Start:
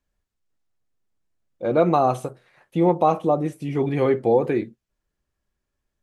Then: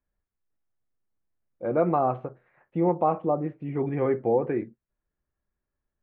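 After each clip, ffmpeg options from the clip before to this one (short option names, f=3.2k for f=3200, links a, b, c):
-af "lowpass=f=2.1k:w=0.5412,lowpass=f=2.1k:w=1.3066,volume=-5dB"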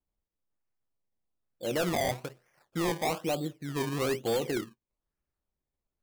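-af "acrusher=samples=22:mix=1:aa=0.000001:lfo=1:lforange=22:lforate=1.1,asoftclip=type=hard:threshold=-20.5dB,volume=-4dB"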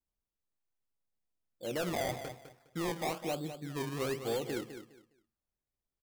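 -af "aecho=1:1:205|410|615:0.316|0.0696|0.0153,volume=-5.5dB"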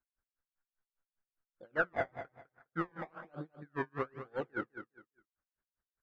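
-af "lowpass=f=1.5k:t=q:w=5.2,aeval=exprs='val(0)*pow(10,-38*(0.5-0.5*cos(2*PI*5*n/s))/20)':c=same,volume=2dB"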